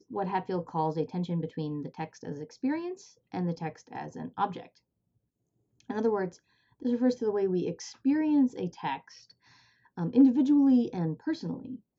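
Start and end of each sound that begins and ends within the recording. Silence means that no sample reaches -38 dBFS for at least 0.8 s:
5.9–8.98

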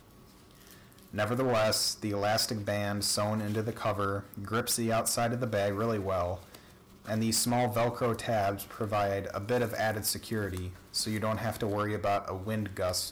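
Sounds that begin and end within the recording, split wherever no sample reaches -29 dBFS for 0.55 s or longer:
1.17–6.35

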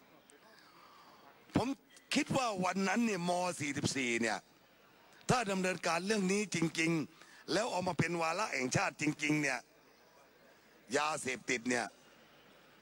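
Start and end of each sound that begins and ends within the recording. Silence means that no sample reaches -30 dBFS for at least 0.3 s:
1.56–1.68
2.11–4.36
5.29–7.01
7.51–9.57
10.94–11.84

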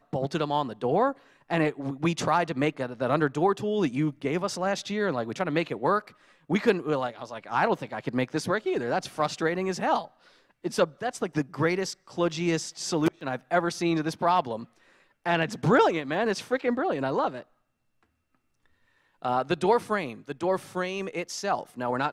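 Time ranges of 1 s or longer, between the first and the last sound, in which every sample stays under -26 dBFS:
17.29–19.25

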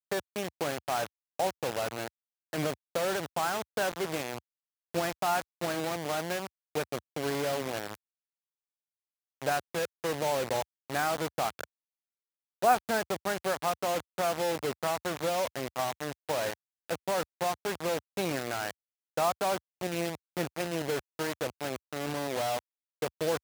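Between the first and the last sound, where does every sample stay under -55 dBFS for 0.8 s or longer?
7.95–9.42
11.64–12.62

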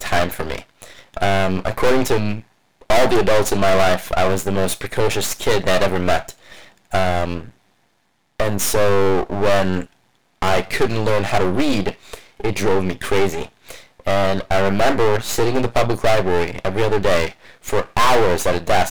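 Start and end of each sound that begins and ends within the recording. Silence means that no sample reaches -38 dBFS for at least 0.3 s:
2.81–7.51
8.4–9.86

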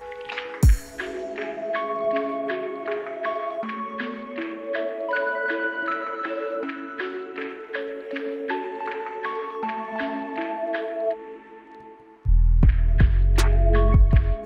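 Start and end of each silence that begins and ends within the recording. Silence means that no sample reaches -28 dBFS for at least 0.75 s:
11.14–12.26

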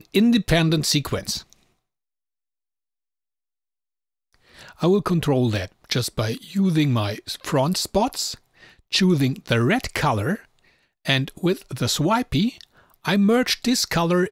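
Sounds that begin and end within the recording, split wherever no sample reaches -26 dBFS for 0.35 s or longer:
4.82–8.33
8.93–10.35
11.07–12.61

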